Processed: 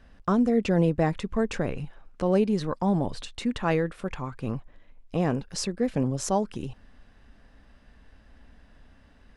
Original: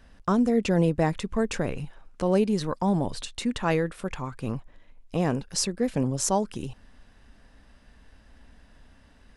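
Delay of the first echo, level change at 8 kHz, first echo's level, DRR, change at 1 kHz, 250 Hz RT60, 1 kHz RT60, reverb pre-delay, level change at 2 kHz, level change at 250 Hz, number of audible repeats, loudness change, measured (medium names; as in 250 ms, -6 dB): no echo, -6.0 dB, no echo, no reverb, -0.5 dB, no reverb, no reverb, no reverb, -1.0 dB, 0.0 dB, no echo, -0.5 dB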